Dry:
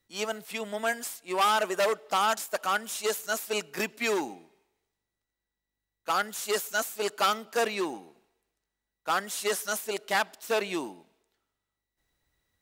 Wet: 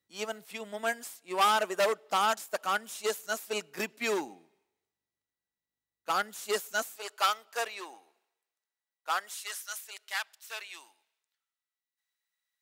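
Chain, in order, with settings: high-pass 92 Hz 12 dB/octave, from 6.96 s 670 Hz, from 9.34 s 1.5 kHz; upward expansion 1.5:1, over -35 dBFS

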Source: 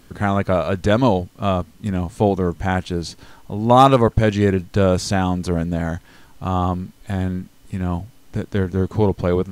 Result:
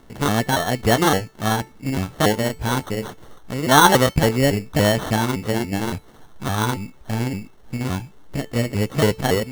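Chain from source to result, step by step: sawtooth pitch modulation +7 st, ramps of 282 ms; sample-and-hold 18×; feedback comb 440 Hz, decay 0.32 s, harmonics all, mix 60%; trim +7 dB

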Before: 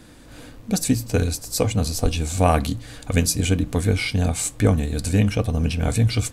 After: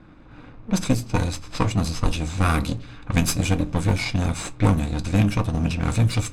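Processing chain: comb filter that takes the minimum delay 0.79 ms; level-controlled noise filter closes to 1.8 kHz, open at -14.5 dBFS; on a send: reverberation RT60 0.30 s, pre-delay 4 ms, DRR 12.5 dB

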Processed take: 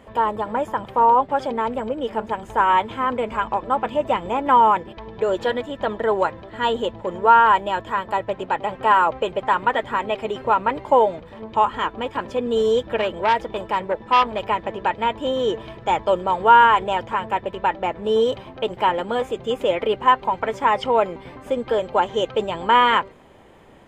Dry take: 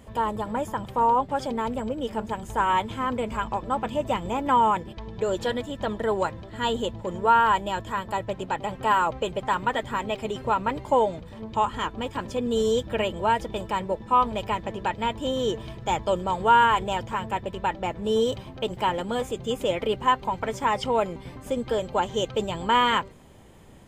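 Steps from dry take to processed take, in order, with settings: tone controls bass -10 dB, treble -13 dB; 12.96–14.40 s: transformer saturation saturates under 1.4 kHz; trim +6 dB

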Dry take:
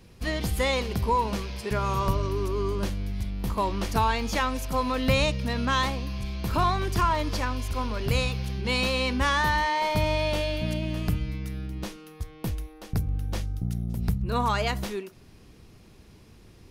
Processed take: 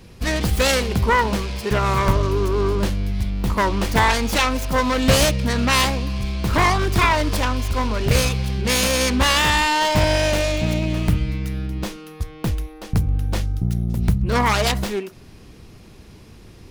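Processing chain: self-modulated delay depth 0.37 ms; trim +8 dB

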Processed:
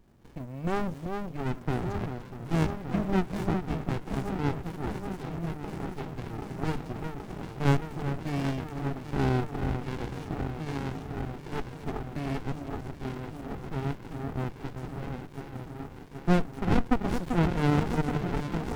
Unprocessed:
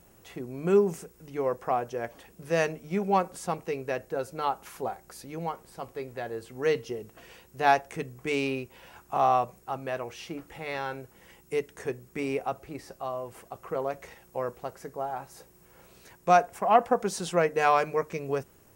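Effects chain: echo whose repeats swap between lows and highs 389 ms, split 950 Hz, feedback 87%, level -5 dB; sliding maximum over 65 samples

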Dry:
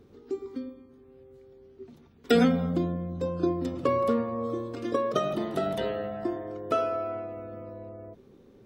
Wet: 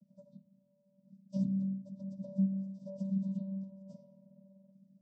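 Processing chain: elliptic band-stop 400–5400 Hz, stop band 60 dB; de-hum 174.5 Hz, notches 20; plain phase-vocoder stretch 0.58×; vocoder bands 16, square 193 Hz

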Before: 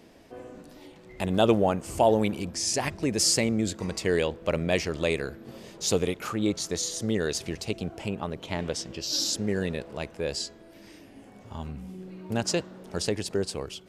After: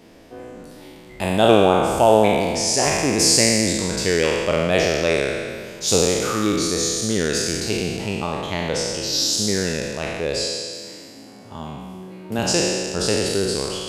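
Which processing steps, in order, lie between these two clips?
spectral sustain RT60 1.90 s; 10.44–12.39 s: high-pass 120 Hz 12 dB/octave; trim +3.5 dB

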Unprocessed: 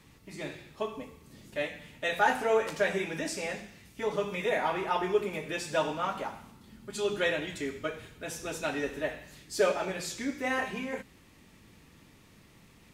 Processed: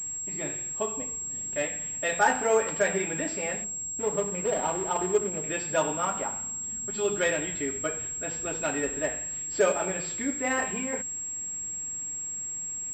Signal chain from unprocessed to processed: 3.64–5.44 s: median filter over 25 samples; class-D stage that switches slowly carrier 7.6 kHz; trim +2.5 dB

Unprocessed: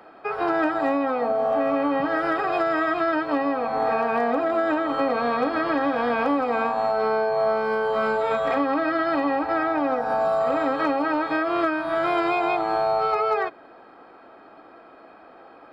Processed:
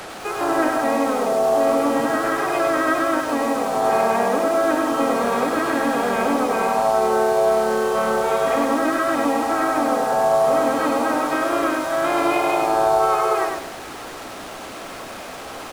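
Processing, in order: one-bit delta coder 64 kbps, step -30 dBFS; harmony voices -3 st -6 dB, +3 st -15 dB; bit-crushed delay 100 ms, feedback 35%, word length 7-bit, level -3.5 dB

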